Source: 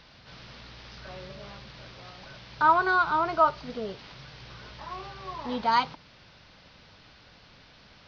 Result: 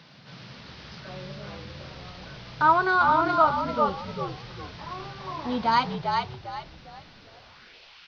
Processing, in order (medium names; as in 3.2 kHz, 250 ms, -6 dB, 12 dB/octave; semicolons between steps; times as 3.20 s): high-pass sweep 150 Hz -> 2.6 kHz, 7.10–7.78 s; frequency-shifting echo 399 ms, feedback 31%, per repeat -60 Hz, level -4 dB; trim +1 dB